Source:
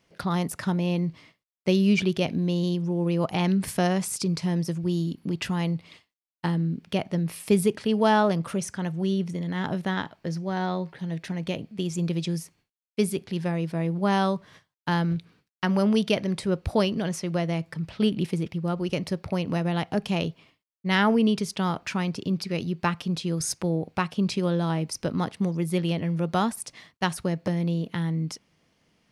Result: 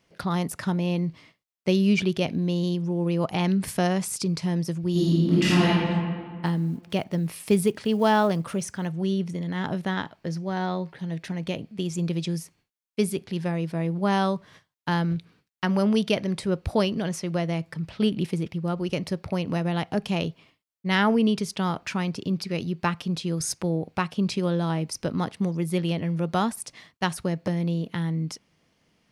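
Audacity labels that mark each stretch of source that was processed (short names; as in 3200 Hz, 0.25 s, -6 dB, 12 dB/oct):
4.910000	5.690000	reverb throw, RT60 1.9 s, DRR -9.5 dB
6.460000	8.880000	block floating point 7-bit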